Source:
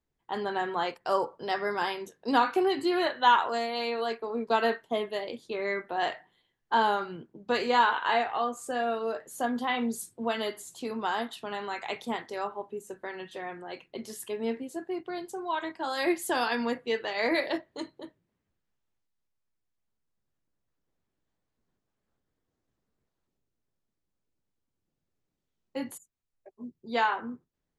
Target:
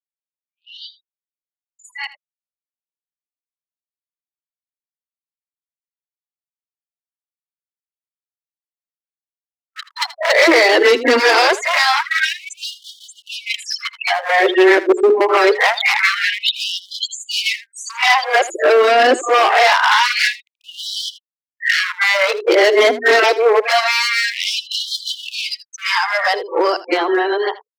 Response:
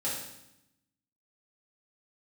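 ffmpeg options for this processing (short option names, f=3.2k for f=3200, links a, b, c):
-filter_complex "[0:a]areverse,bandreject=f=60:t=h:w=6,bandreject=f=120:t=h:w=6,bandreject=f=180:t=h:w=6,bandreject=f=240:t=h:w=6,bandreject=f=300:t=h:w=6,bandreject=f=360:t=h:w=6,bandreject=f=420:t=h:w=6,afftfilt=real='re*gte(hypot(re,im),0.00891)':imag='im*gte(hypot(re,im),0.00891)':win_size=1024:overlap=0.75,adynamicequalizer=threshold=0.00126:dfrequency=5100:dqfactor=3.7:tfrequency=5100:tqfactor=3.7:attack=5:release=100:ratio=0.375:range=2:mode=boostabove:tftype=bell,acrossover=split=1300|4300[a][b][c];[a]acompressor=threshold=-34dB:ratio=4[d];[b]acompressor=threshold=-42dB:ratio=4[e];[c]acompressor=threshold=-56dB:ratio=4[f];[d][e][f]amix=inputs=3:normalize=0,asplit=2[g][h];[h]alimiter=level_in=6.5dB:limit=-24dB:level=0:latency=1:release=46,volume=-6.5dB,volume=2dB[i];[g][i]amix=inputs=2:normalize=0,dynaudnorm=f=710:g=9:m=13dB,aeval=exprs='0.531*sin(PI/2*2.24*val(0)/0.531)':c=same,highpass=190,equalizer=f=340:t=q:w=4:g=9,equalizer=f=870:t=q:w=4:g=-4,equalizer=f=2.1k:t=q:w=4:g=6,equalizer=f=5.3k:t=q:w=4:g=7,lowpass=f=6.7k:w=0.5412,lowpass=f=6.7k:w=1.3066,aeval=exprs='clip(val(0),-1,0.447)':c=same,asplit=2[j][k];[k]aecho=0:1:80:0.15[l];[j][l]amix=inputs=2:normalize=0,afftfilt=real='re*gte(b*sr/1024,240*pow(3000/240,0.5+0.5*sin(2*PI*0.25*pts/sr)))':imag='im*gte(b*sr/1024,240*pow(3000/240,0.5+0.5*sin(2*PI*0.25*pts/sr)))':win_size=1024:overlap=0.75,volume=-1.5dB"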